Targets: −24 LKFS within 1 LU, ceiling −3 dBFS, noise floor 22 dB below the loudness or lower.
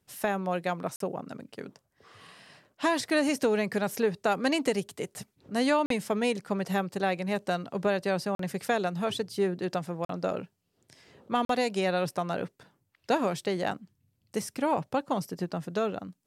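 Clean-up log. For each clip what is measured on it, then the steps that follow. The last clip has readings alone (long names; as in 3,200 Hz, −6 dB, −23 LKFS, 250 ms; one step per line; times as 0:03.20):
number of dropouts 5; longest dropout 43 ms; integrated loudness −30.0 LKFS; sample peak −15.0 dBFS; target loudness −24.0 LKFS
→ repair the gap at 0:00.96/0:05.86/0:08.35/0:10.05/0:11.45, 43 ms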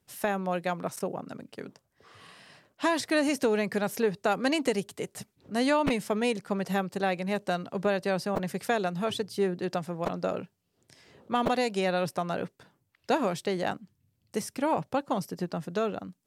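number of dropouts 0; integrated loudness −30.0 LKFS; sample peak −13.0 dBFS; target loudness −24.0 LKFS
→ level +6 dB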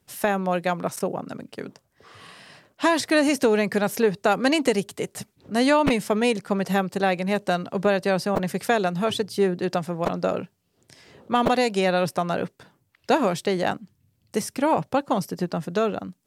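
integrated loudness −24.0 LKFS; sample peak −7.0 dBFS; background noise floor −70 dBFS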